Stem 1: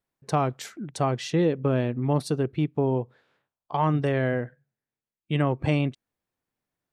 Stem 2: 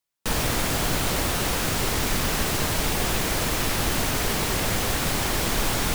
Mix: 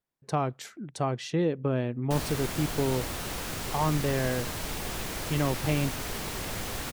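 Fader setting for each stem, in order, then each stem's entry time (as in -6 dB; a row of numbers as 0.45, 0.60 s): -4.0, -10.0 dB; 0.00, 1.85 s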